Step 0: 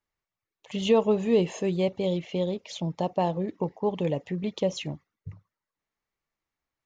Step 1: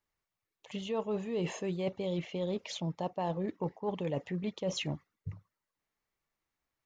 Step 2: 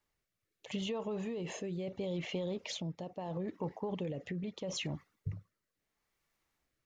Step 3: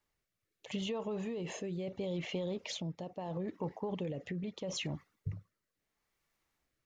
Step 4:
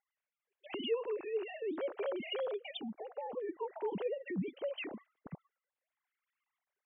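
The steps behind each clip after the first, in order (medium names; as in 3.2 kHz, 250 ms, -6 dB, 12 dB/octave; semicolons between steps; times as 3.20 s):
reverse; compression 12:1, threshold -31 dBFS, peak gain reduction 16 dB; reverse; dynamic bell 1.4 kHz, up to +5 dB, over -54 dBFS, Q 1.1
peak limiter -32 dBFS, peak gain reduction 10.5 dB; compression, threshold -40 dBFS, peak gain reduction 5.5 dB; rotary cabinet horn 0.75 Hz; trim +7 dB
no audible change
formants replaced by sine waves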